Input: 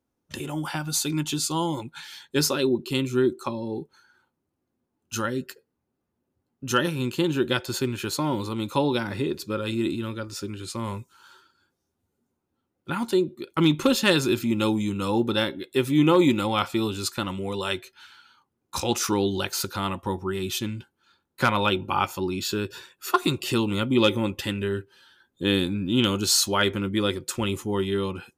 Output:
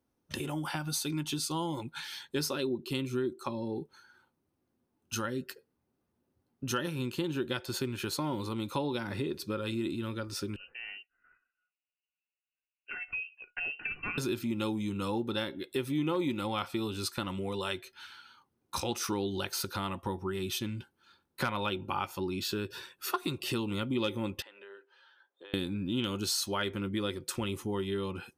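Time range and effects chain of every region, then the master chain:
0:10.56–0:14.18: noise gate −53 dBFS, range −9 dB + tuned comb filter 720 Hz, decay 0.18 s, mix 80% + voice inversion scrambler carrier 2,900 Hz
0:24.42–0:25.54: high-pass filter 520 Hz 24 dB per octave + downward compressor 3 to 1, threshold −47 dBFS + head-to-tape spacing loss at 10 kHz 27 dB
whole clip: notch filter 7,100 Hz, Q 7.1; downward compressor 2.5 to 1, threshold −34 dBFS

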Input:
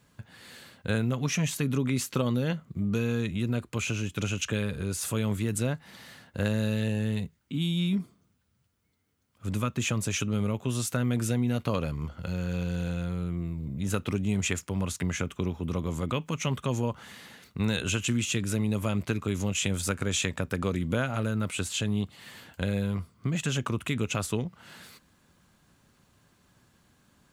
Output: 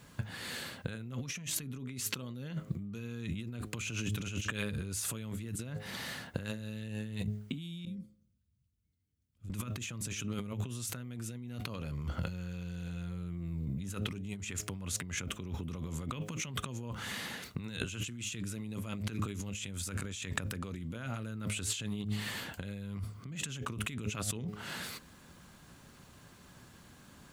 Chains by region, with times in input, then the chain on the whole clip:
0:07.85–0:09.50: guitar amp tone stack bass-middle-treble 10-0-1 + downward compressor 2.5 to 1, threshold −48 dBFS
whole clip: hum removal 104.7 Hz, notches 7; dynamic equaliser 650 Hz, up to −6 dB, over −44 dBFS, Q 0.73; compressor whose output falls as the input rises −39 dBFS, ratio −1

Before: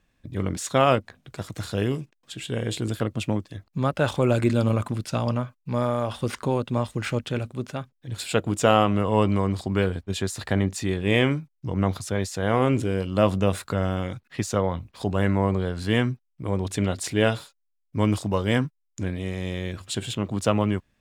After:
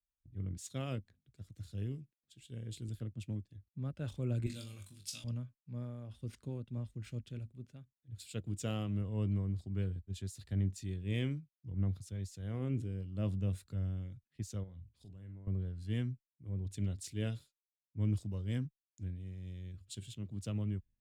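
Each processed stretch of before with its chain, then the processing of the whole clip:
0:04.46–0:05.24: tilt shelving filter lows −9.5 dB, about 1,300 Hz + flutter between parallel walls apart 3.5 metres, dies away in 0.26 s
0:14.63–0:15.47: downward compressor 2 to 1, threshold −34 dBFS + double-tracking delay 48 ms −10.5 dB
whole clip: guitar amp tone stack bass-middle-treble 10-0-1; multiband upward and downward expander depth 70%; level +1.5 dB

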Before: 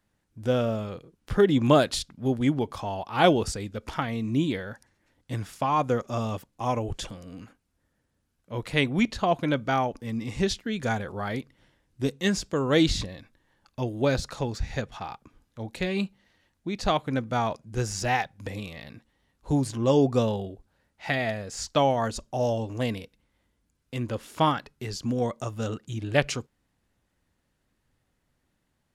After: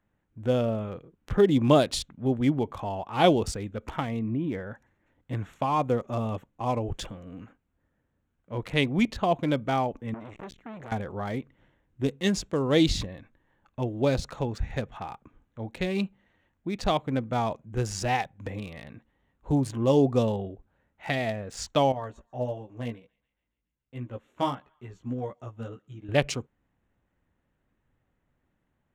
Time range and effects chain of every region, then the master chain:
0:04.19–0:04.70: downward compressor 4 to 1, threshold −25 dBFS + Gaussian smoothing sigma 2.9 samples
0:10.14–0:10.92: downward compressor 4 to 1, threshold −32 dBFS + saturating transformer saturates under 1,300 Hz
0:21.92–0:26.09: chorus effect 1.5 Hz, delay 15 ms, depth 2.1 ms + feedback echo with a high-pass in the loop 139 ms, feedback 66%, high-pass 1,000 Hz, level −23 dB + expander for the loud parts, over −42 dBFS
whole clip: adaptive Wiener filter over 9 samples; dynamic equaliser 1,500 Hz, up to −6 dB, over −42 dBFS, Q 2

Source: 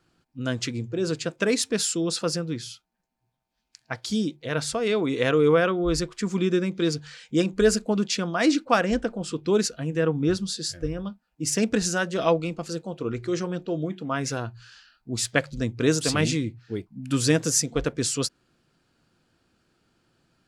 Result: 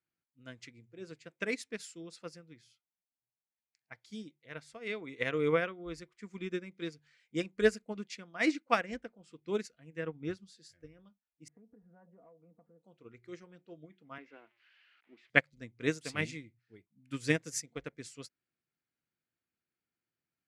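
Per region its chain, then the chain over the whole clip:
0:11.48–0:12.83: low-pass filter 1,000 Hz 24 dB per octave + comb filter 4.2 ms, depth 70% + downward compressor, threshold −29 dBFS
0:14.18–0:15.30: spike at every zero crossing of −23.5 dBFS + Chebyshev band-pass filter 290–2,900 Hz, order 3 + low-shelf EQ 480 Hz +5.5 dB
whole clip: high-pass filter 59 Hz; parametric band 2,100 Hz +11.5 dB 0.52 octaves; expander for the loud parts 2.5 to 1, over −29 dBFS; level −5 dB

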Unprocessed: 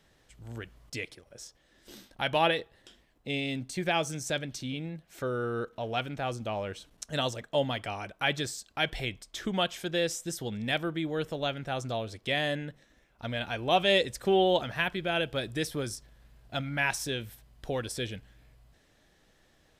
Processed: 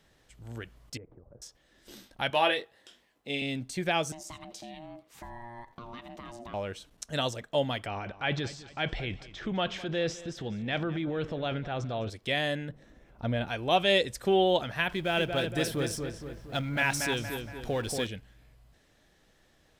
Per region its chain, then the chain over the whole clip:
0:00.97–0:01.42: low-pass filter 1,100 Hz 24 dB per octave + low-shelf EQ 280 Hz +9.5 dB + downward compressor 2.5 to 1, threshold −50 dBFS
0:02.30–0:03.42: high-pass filter 370 Hz 6 dB per octave + double-tracking delay 21 ms −6.5 dB
0:04.12–0:06.54: downward compressor 10 to 1, threshold −37 dBFS + ring modulation 470 Hz + single-tap delay 82 ms −17 dB
0:07.86–0:12.10: transient designer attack −2 dB, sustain +8 dB + high-frequency loss of the air 180 metres + repeating echo 208 ms, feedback 44%, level −17.5 dB
0:12.69–0:13.48: tilt shelving filter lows +6.5 dB, about 1,200 Hz + upward compression, threshold −48 dBFS
0:14.89–0:18.07: mu-law and A-law mismatch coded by mu + feedback echo with a low-pass in the loop 233 ms, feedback 52%, low-pass 2,600 Hz, level −5 dB
whole clip: no processing

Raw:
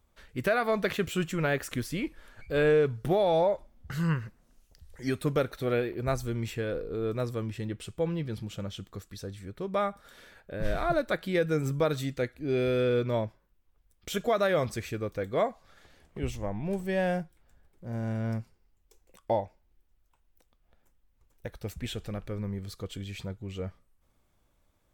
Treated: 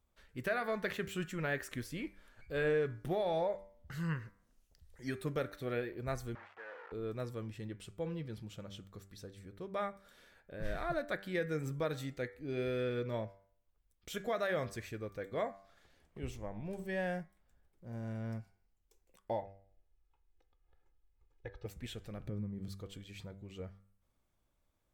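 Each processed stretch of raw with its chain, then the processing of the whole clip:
0:06.35–0:06.92: bit-depth reduction 6 bits, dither none + flat-topped band-pass 1,100 Hz, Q 1
0:19.42–0:21.66: high-frequency loss of the air 180 metres + comb filter 2.4 ms, depth 87%
0:22.20–0:22.68: parametric band 160 Hz +14 dB 2.8 octaves + downward compressor, threshold −26 dBFS
whole clip: hum removal 97.92 Hz, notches 24; dynamic equaliser 1,800 Hz, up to +6 dB, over −50 dBFS, Q 3.7; level −9 dB

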